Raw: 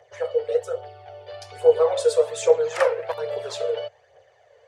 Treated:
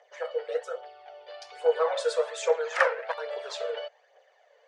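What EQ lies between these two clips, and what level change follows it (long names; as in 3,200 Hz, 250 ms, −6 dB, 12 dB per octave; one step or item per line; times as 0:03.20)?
dynamic equaliser 1,600 Hz, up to +8 dB, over −41 dBFS, Q 1.6
band-pass filter 620–6,500 Hz
−2.5 dB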